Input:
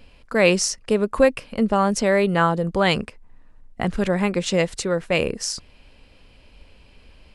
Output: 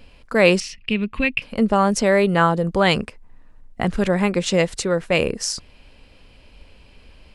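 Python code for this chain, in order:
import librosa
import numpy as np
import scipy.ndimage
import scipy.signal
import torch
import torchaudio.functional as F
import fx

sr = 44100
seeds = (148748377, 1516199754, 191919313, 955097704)

y = fx.curve_eq(x, sr, hz=(220.0, 570.0, 1500.0, 2600.0, 6600.0), db=(0, -17, -9, 11, -17), at=(0.6, 1.42))
y = y * librosa.db_to_amplitude(2.0)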